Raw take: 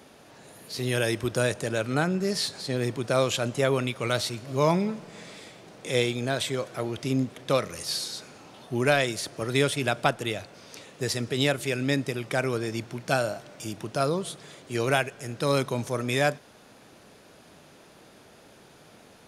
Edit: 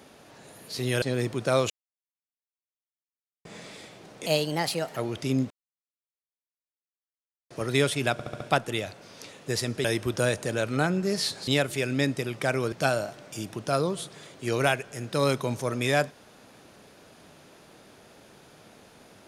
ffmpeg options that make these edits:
ffmpeg -i in.wav -filter_complex "[0:a]asplit=15[link_01][link_02][link_03][link_04][link_05][link_06][link_07][link_08][link_09][link_10][link_11][link_12][link_13][link_14][link_15];[link_01]atrim=end=1.022[link_16];[link_02]atrim=start=2.648:end=3.33,asetpts=PTS-STARTPTS,afade=type=out:start_time=0.678:duration=0.004:curve=hsin[link_17];[link_03]atrim=start=3.33:end=5.08,asetpts=PTS-STARTPTS,volume=0[link_18];[link_04]atrim=start=5.08:end=5.894,asetpts=PTS-STARTPTS,afade=type=in:duration=0.004:curve=hsin[link_19];[link_05]atrim=start=5.89:end=6.77,asetpts=PTS-STARTPTS,asetrate=55125,aresample=44100,atrim=end_sample=31046,asetpts=PTS-STARTPTS[link_20];[link_06]atrim=start=6.766:end=7.31,asetpts=PTS-STARTPTS,afade=type=out:start_time=0.54:duration=0.004:curve=hsin[link_21];[link_07]atrim=start=7.31:end=9.31,asetpts=PTS-STARTPTS,volume=0[link_22];[link_08]atrim=start=9.31:end=10.002,asetpts=PTS-STARTPTS,afade=type=in:duration=0.004:curve=hsin[link_23];[link_09]atrim=start=9.928:end=10.002[link_24];[link_10]atrim=start=9.928:end=10.002[link_25];[link_11]atrim=start=9.928:end=10.002[link_26];[link_12]atrim=start=9.928:end=11.372[link_27];[link_13]atrim=start=1.018:end=2.652[link_28];[link_14]atrim=start=11.368:end=12.622[link_29];[link_15]atrim=start=12.998[link_30];[link_17][link_18][link_19]concat=n=3:v=0:a=1[link_31];[link_16][link_31]acrossfade=duration=0.004:curve1=hsin:curve2=hsin[link_32];[link_32][link_20]acrossfade=duration=0.004:curve1=hsin:curve2=hsin[link_33];[link_21][link_22][link_23]concat=n=3:v=0:a=1[link_34];[link_33][link_34]acrossfade=duration=0.004:curve1=hsin:curve2=hsin[link_35];[link_35][link_24]acrossfade=duration=0.004:curve1=hsin:curve2=hsin[link_36];[link_36][link_25]acrossfade=duration=0.004:curve1=hsin:curve2=hsin[link_37];[link_37][link_26]acrossfade=duration=0.004:curve1=hsin:curve2=hsin[link_38];[link_38][link_27]acrossfade=duration=0.004:curve1=hsin:curve2=hsin[link_39];[link_39][link_28]acrossfade=duration=0.004:curve1=hsin:curve2=hsin[link_40];[link_40][link_29]acrossfade=duration=0.004:curve1=hsin:curve2=hsin[link_41];[link_41][link_30]acrossfade=duration=0.004:curve1=hsin:curve2=hsin" out.wav

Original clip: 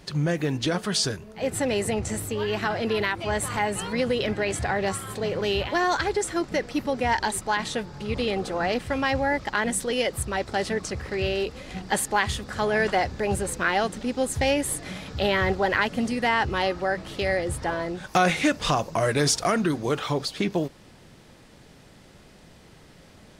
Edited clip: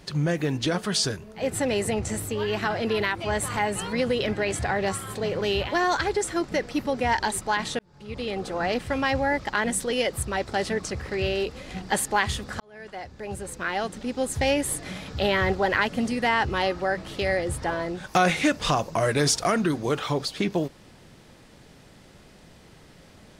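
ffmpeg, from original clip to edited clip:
ffmpeg -i in.wav -filter_complex "[0:a]asplit=3[link_01][link_02][link_03];[link_01]atrim=end=7.79,asetpts=PTS-STARTPTS,afade=type=out:start_time=7.786:duration=0.004:curve=hsin[link_04];[link_02]atrim=start=7.79:end=12.6,asetpts=PTS-STARTPTS,afade=type=in:duration=1.17:curve=qsin,afade=type=out:start_time=4.806:duration=0.004:curve=hsin[link_05];[link_03]atrim=start=12.6,asetpts=PTS-STARTPTS,afade=type=in:duration=1.93[link_06];[link_04][link_05][link_06]concat=n=3:v=0:a=1" out.wav

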